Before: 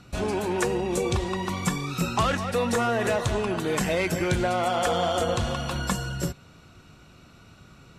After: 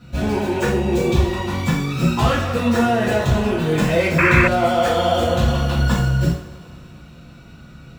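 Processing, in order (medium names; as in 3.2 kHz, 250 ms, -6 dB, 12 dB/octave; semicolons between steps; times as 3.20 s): median filter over 5 samples; bass shelf 220 Hz +4.5 dB; two-slope reverb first 0.45 s, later 3 s, from -22 dB, DRR -9.5 dB; painted sound noise, 4.18–4.48 s, 940–2700 Hz -12 dBFS; trim -4.5 dB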